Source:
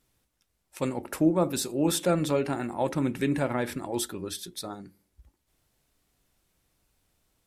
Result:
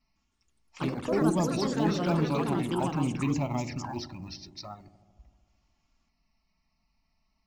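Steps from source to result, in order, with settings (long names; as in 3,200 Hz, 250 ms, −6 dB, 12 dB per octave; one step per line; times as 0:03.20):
Chebyshev low-pass filter 5,600 Hz, order 6
in parallel at −12 dB: floating-point word with a short mantissa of 2 bits
on the sum: flanger swept by the level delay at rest 4.6 ms, full sweep at −23.5 dBFS
phaser with its sweep stopped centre 2,300 Hz, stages 8
on a send: delay with a low-pass on its return 75 ms, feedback 77%, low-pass 500 Hz, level −12.5 dB
on the sum: delay with pitch and tempo change per echo 158 ms, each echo +4 semitones, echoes 3
level +1.5 dB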